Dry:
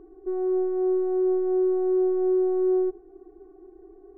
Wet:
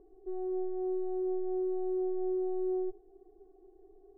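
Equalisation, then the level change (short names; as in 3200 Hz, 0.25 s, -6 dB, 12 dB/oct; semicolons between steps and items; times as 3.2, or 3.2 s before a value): running mean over 34 samples; bell 90 Hz -14.5 dB 2.8 oct; bell 320 Hz -9 dB 0.45 oct; 0.0 dB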